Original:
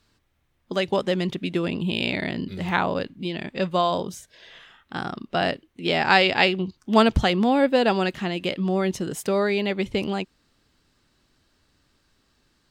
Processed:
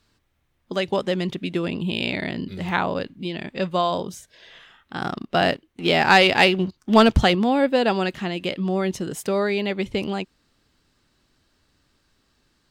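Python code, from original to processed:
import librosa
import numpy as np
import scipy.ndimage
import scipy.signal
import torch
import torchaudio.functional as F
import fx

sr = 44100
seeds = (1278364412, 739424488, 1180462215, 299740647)

y = fx.leveller(x, sr, passes=1, at=(5.01, 7.35))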